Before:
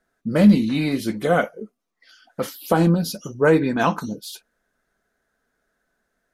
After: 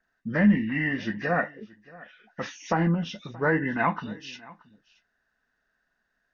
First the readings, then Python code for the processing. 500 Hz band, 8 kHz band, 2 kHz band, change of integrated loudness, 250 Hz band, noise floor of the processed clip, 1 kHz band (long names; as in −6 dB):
−9.5 dB, −12.0 dB, 0.0 dB, −6.5 dB, −7.0 dB, −77 dBFS, −4.5 dB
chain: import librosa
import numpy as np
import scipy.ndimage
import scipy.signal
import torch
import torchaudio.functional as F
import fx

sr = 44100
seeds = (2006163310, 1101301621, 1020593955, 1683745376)

p1 = fx.freq_compress(x, sr, knee_hz=1400.0, ratio=1.5)
p2 = fx.peak_eq(p1, sr, hz=1800.0, db=14.0, octaves=0.69)
p3 = p2 + 0.34 * np.pad(p2, (int(1.1 * sr / 1000.0), 0))[:len(p2)]
p4 = fx.env_lowpass_down(p3, sr, base_hz=2300.0, full_db=-13.5)
p5 = p4 + fx.echo_single(p4, sr, ms=627, db=-22.0, dry=0)
y = p5 * librosa.db_to_amplitude(-7.5)